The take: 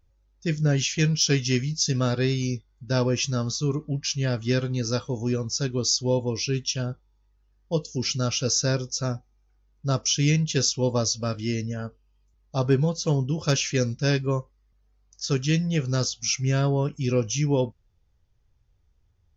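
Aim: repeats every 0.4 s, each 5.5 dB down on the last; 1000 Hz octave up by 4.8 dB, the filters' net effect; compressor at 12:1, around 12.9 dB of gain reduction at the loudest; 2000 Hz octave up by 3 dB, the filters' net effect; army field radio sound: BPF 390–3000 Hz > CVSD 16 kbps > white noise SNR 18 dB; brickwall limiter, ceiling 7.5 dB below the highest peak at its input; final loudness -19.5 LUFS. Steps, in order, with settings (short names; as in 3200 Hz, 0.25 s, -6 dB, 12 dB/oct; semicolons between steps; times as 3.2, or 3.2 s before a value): bell 1000 Hz +5.5 dB; bell 2000 Hz +3.5 dB; compressor 12:1, threshold -30 dBFS; limiter -27 dBFS; BPF 390–3000 Hz; feedback echo 0.4 s, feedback 53%, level -5.5 dB; CVSD 16 kbps; white noise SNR 18 dB; gain +23.5 dB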